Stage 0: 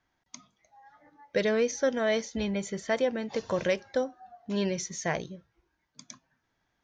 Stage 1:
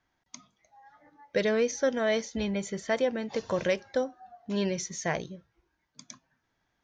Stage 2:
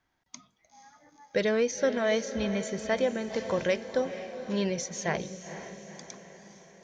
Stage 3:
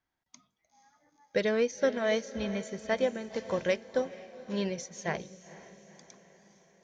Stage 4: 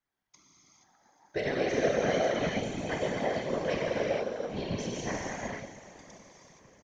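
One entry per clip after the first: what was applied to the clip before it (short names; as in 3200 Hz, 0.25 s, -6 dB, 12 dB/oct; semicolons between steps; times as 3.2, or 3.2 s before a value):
nothing audible
diffused feedback echo 0.48 s, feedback 54%, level -11 dB
upward expander 1.5:1, over -40 dBFS
frequency-shifting echo 0.28 s, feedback 60%, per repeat +94 Hz, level -19 dB; non-linear reverb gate 0.5 s flat, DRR -5.5 dB; whisperiser; gain -5.5 dB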